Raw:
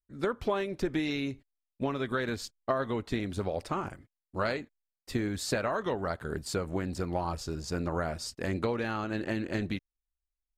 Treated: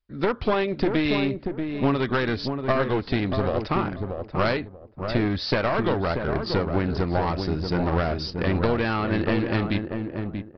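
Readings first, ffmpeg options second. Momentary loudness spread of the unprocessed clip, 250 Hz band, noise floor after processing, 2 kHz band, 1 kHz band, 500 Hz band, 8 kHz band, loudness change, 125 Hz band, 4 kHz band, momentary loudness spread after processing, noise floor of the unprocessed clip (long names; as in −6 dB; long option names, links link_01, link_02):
6 LU, +9.0 dB, −44 dBFS, +8.0 dB, +8.0 dB, +8.0 dB, below −10 dB, +8.0 dB, +10.5 dB, +8.0 dB, 7 LU, below −85 dBFS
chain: -filter_complex "[0:a]aresample=11025,aeval=exprs='clip(val(0),-1,0.0237)':channel_layout=same,aresample=44100,asplit=2[link_01][link_02];[link_02]adelay=635,lowpass=frequency=990:poles=1,volume=-5dB,asplit=2[link_03][link_04];[link_04]adelay=635,lowpass=frequency=990:poles=1,volume=0.24,asplit=2[link_05][link_06];[link_06]adelay=635,lowpass=frequency=990:poles=1,volume=0.24[link_07];[link_01][link_03][link_05][link_07]amix=inputs=4:normalize=0,volume=9dB"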